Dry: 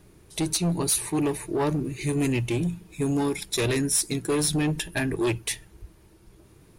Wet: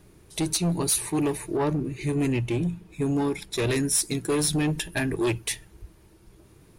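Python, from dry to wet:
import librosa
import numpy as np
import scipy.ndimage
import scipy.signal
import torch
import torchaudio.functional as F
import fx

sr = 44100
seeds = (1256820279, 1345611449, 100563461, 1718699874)

y = fx.high_shelf(x, sr, hz=4000.0, db=-8.5, at=(1.57, 3.67))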